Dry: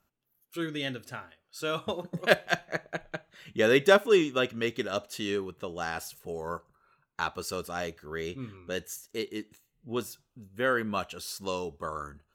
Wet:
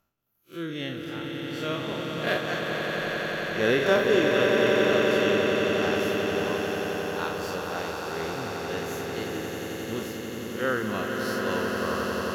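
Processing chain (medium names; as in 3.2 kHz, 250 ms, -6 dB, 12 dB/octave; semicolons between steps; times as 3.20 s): spectral blur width 103 ms; peaking EQ 8.6 kHz -11.5 dB 0.33 oct; on a send: echo with a slow build-up 89 ms, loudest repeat 8, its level -7 dB; on the sum: trim +2 dB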